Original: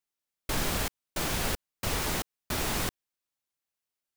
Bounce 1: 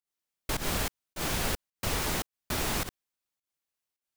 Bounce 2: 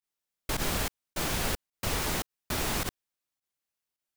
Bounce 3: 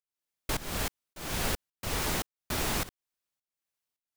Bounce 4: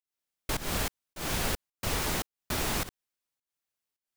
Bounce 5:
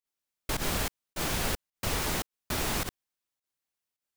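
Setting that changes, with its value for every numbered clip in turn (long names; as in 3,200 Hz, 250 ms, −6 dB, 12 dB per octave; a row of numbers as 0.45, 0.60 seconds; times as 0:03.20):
fake sidechain pumping, release: 145, 63, 402, 238, 99 milliseconds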